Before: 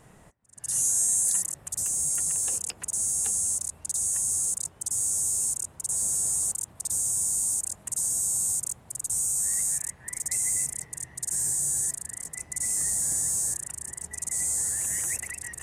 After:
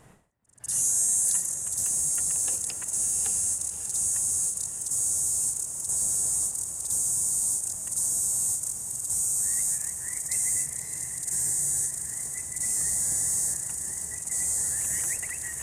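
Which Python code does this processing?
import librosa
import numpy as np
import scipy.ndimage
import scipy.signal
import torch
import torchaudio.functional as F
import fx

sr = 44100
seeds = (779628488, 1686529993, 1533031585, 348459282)

y = fx.echo_diffused(x, sr, ms=597, feedback_pct=52, wet_db=-8.5)
y = fx.end_taper(y, sr, db_per_s=120.0)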